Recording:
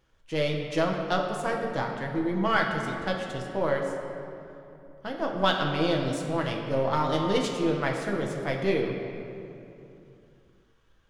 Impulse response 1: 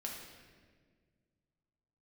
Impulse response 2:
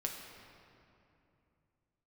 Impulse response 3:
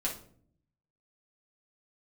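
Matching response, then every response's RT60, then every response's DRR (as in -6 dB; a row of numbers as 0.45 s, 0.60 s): 2; 1.7 s, 2.8 s, 0.55 s; -1.5 dB, 0.0 dB, -4.5 dB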